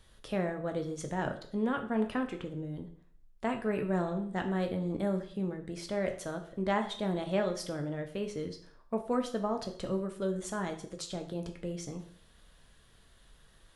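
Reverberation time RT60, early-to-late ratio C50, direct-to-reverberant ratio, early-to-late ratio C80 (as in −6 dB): 0.50 s, 11.0 dB, 4.5 dB, 14.5 dB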